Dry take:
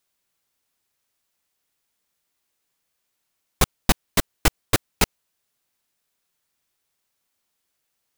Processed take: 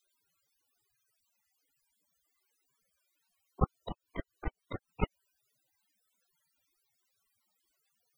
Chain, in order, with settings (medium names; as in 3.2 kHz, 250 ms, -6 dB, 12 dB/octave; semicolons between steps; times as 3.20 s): loudest bins only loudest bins 32; 3.76–4.89 s: compression 4:1, threshold -26 dBFS, peak gain reduction 11.5 dB; slow attack 144 ms; trim +8.5 dB